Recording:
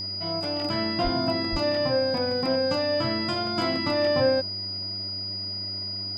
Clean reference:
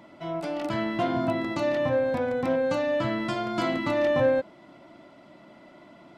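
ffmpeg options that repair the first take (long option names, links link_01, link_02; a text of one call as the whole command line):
ffmpeg -i in.wav -filter_complex "[0:a]bandreject=frequency=97.2:width_type=h:width=4,bandreject=frequency=194.4:width_type=h:width=4,bandreject=frequency=291.6:width_type=h:width=4,bandreject=frequency=388.8:width_type=h:width=4,bandreject=frequency=4900:width=30,asplit=3[link_01][link_02][link_03];[link_01]afade=type=out:start_time=1.03:duration=0.02[link_04];[link_02]highpass=frequency=140:width=0.5412,highpass=frequency=140:width=1.3066,afade=type=in:start_time=1.03:duration=0.02,afade=type=out:start_time=1.15:duration=0.02[link_05];[link_03]afade=type=in:start_time=1.15:duration=0.02[link_06];[link_04][link_05][link_06]amix=inputs=3:normalize=0,asplit=3[link_07][link_08][link_09];[link_07]afade=type=out:start_time=1.51:duration=0.02[link_10];[link_08]highpass=frequency=140:width=0.5412,highpass=frequency=140:width=1.3066,afade=type=in:start_time=1.51:duration=0.02,afade=type=out:start_time=1.63:duration=0.02[link_11];[link_09]afade=type=in:start_time=1.63:duration=0.02[link_12];[link_10][link_11][link_12]amix=inputs=3:normalize=0" out.wav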